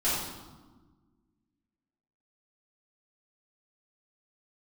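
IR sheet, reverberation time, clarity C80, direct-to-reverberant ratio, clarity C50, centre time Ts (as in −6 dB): 1.4 s, 2.0 dB, −12.0 dB, −1.0 dB, 79 ms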